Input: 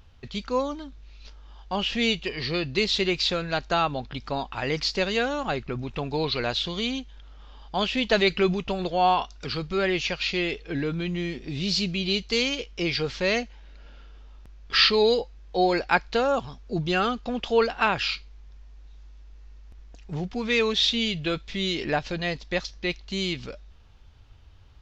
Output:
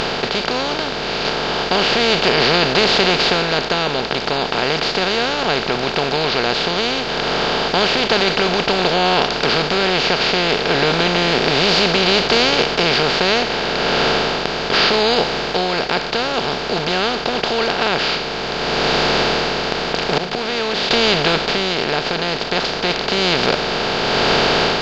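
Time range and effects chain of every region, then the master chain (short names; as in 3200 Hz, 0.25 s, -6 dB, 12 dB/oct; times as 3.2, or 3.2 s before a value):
20.17–20.91 notches 50/100/150/200/250 Hz + flipped gate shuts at -26 dBFS, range -29 dB
whole clip: per-bin compression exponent 0.2; AGC; gain -1 dB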